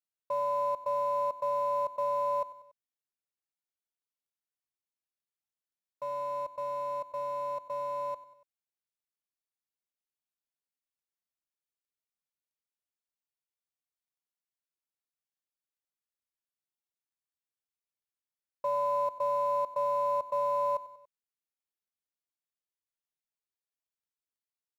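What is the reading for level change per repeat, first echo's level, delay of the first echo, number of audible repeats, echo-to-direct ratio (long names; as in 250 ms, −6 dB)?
−5.0 dB, −17.5 dB, 95 ms, 3, −16.0 dB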